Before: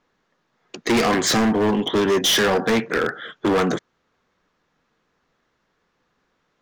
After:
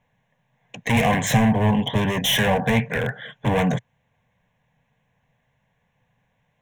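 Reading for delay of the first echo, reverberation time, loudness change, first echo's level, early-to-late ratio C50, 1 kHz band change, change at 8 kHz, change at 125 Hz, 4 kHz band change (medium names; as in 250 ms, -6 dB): no echo, no reverb, -1.0 dB, no echo, no reverb, -0.5 dB, -5.0 dB, +9.5 dB, -3.0 dB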